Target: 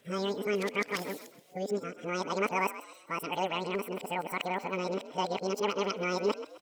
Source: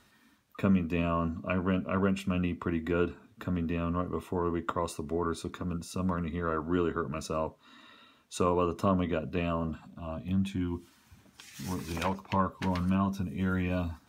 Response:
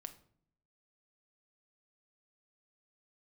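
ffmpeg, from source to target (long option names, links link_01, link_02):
-filter_complex "[0:a]areverse,asetrate=93933,aresample=44100,asplit=4[link_01][link_02][link_03][link_04];[link_02]adelay=130,afreqshift=51,volume=-14dB[link_05];[link_03]adelay=260,afreqshift=102,volume=-22.9dB[link_06];[link_04]adelay=390,afreqshift=153,volume=-31.7dB[link_07];[link_01][link_05][link_06][link_07]amix=inputs=4:normalize=0,volume=-2dB"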